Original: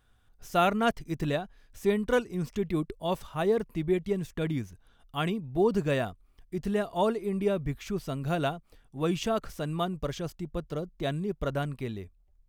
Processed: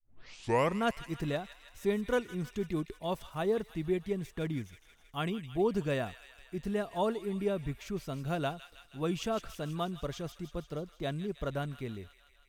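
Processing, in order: tape start at the beginning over 0.80 s; thin delay 0.16 s, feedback 68%, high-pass 1900 Hz, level -9.5 dB; gain -4.5 dB

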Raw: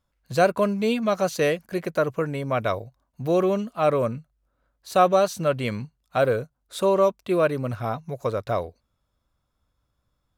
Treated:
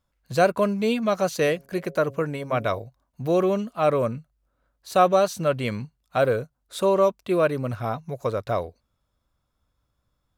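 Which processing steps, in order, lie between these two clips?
1.46–2.8 de-hum 137.1 Hz, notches 5

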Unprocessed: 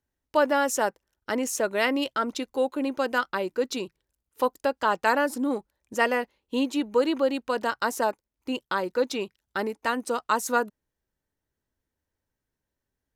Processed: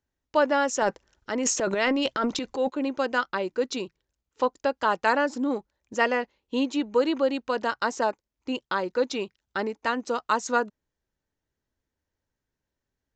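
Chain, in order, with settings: downsampling 16000 Hz; 0.82–2.7 transient shaper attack -3 dB, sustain +12 dB

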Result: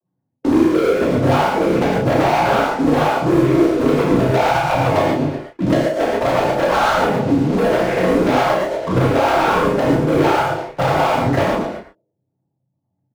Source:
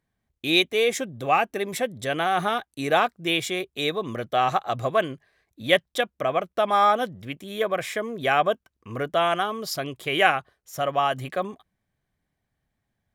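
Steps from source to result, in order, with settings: LPF 1400 Hz 24 dB/oct; spectral gate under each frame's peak -15 dB strong; narrowing echo 0.113 s, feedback 41%, band-pass 360 Hz, level -15 dB; compressor 16:1, threshold -29 dBFS, peak gain reduction 14 dB; noise vocoder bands 16; sample leveller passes 5; doubler 32 ms -6 dB; non-linear reverb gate 0.16 s flat, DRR -4 dB; three-band squash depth 40%

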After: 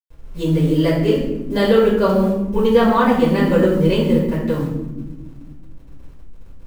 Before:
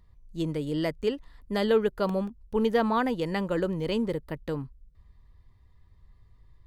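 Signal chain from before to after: level-crossing sampler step -48 dBFS; reverb, pre-delay 5 ms, DRR -8.5 dB; gain -2.5 dB

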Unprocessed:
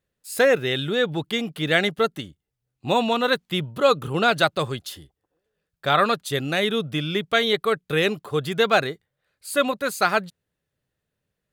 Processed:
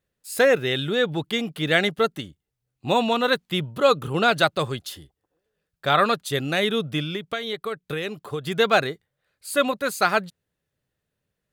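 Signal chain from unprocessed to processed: 7.02–8.47 compressor 6:1, threshold -26 dBFS, peak gain reduction 11.5 dB

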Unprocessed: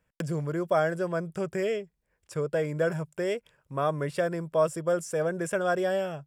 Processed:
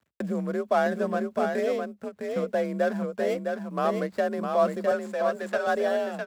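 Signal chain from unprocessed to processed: median filter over 15 samples; 4.91–5.67 weighting filter A; requantised 12-bit, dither none; frequency shift +44 Hz; echo 0.658 s -5 dB; ending taper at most 390 dB/s; gain +1.5 dB

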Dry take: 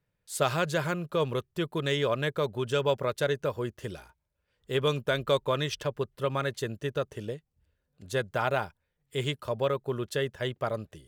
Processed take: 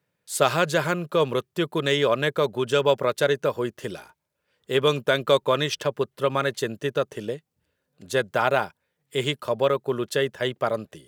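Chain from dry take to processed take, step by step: HPF 170 Hz 12 dB/oct; gain +6.5 dB

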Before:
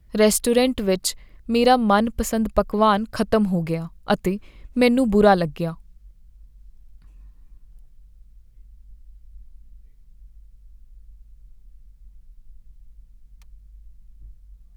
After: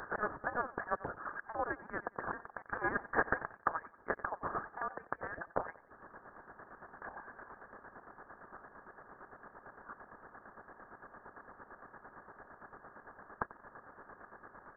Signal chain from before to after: per-bin compression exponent 0.6; reverb removal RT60 0.56 s; in parallel at +0.5 dB: limiter -11.5 dBFS, peak gain reduction 11.5 dB; on the sum: compressor 6:1, threshold -23 dBFS, peak gain reduction 16 dB; 2.66–3.47 sample leveller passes 2; rippled Chebyshev high-pass 1700 Hz, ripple 3 dB; chopper 8.8 Hz, depth 60%, duty 40%; on a send: feedback echo 91 ms, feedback 35%, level -17 dB; on the sum: inverted band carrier 3400 Hz; gain +7.5 dB

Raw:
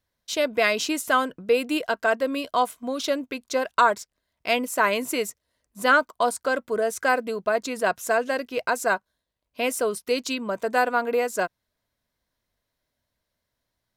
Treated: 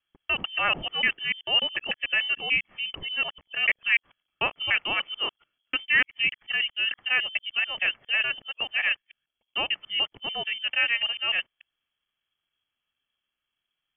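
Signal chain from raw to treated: local time reversal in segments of 0.147 s; inverted band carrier 3300 Hz; gain -3 dB

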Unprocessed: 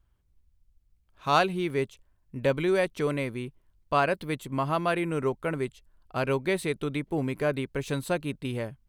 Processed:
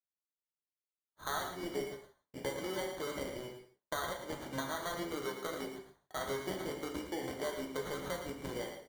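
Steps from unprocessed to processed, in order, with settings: octaver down 1 oct, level +3 dB; HPF 450 Hz 12 dB/oct; expander -60 dBFS; compressor 6:1, threshold -38 dBFS, peak gain reduction 19.5 dB; sample-and-hold 17×; echo 0.112 s -9 dB; non-linear reverb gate 0.2 s falling, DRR 1.5 dB

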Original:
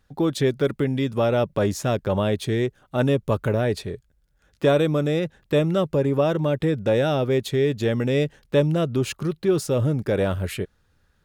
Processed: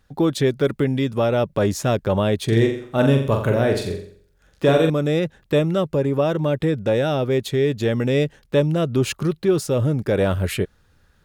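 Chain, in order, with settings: vocal rider within 4 dB 0.5 s; 2.44–4.9 flutter echo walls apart 7.5 m, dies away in 0.53 s; gain +2 dB

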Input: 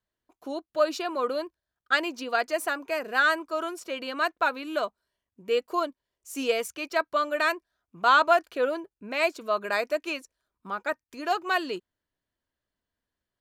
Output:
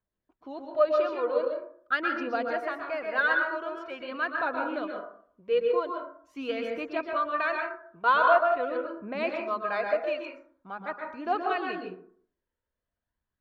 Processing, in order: phaser 0.44 Hz, delay 2.3 ms, feedback 47%; air absorption 290 m; plate-style reverb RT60 0.56 s, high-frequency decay 0.4×, pre-delay 0.11 s, DRR 1.5 dB; gain -4 dB

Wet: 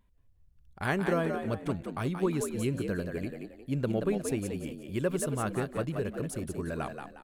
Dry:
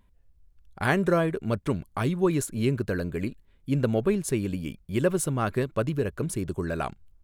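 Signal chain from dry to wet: frequency-shifting echo 0.179 s, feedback 34%, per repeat +61 Hz, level -6.5 dB; gain -6 dB

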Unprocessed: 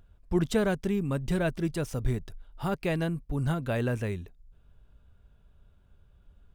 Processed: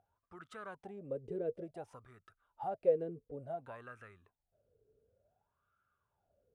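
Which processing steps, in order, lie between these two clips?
fifteen-band EQ 100 Hz +10 dB, 1000 Hz -9 dB, 10000 Hz +11 dB; compressor, threshold -28 dBFS, peak gain reduction 9 dB; wah 0.56 Hz 430–1300 Hz, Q 15; gain +13 dB

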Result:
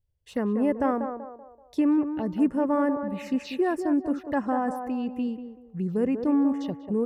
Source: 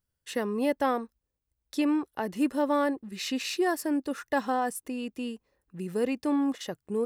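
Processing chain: tone controls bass +11 dB, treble -11 dB; envelope phaser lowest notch 220 Hz, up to 3900 Hz, full sweep at -23 dBFS; on a send: narrowing echo 0.191 s, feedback 43%, band-pass 640 Hz, level -6 dB

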